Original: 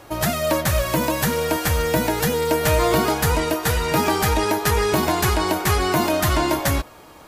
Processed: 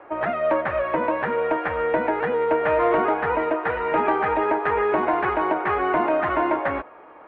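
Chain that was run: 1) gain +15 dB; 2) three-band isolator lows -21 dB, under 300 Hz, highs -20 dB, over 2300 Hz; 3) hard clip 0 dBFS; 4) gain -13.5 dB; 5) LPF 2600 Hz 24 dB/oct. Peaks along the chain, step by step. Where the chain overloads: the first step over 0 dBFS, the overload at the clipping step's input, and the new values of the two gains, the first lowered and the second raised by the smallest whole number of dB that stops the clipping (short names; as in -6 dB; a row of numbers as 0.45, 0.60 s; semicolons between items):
+8.0, +5.5, 0.0, -13.5, -12.5 dBFS; step 1, 5.5 dB; step 1 +9 dB, step 4 -7.5 dB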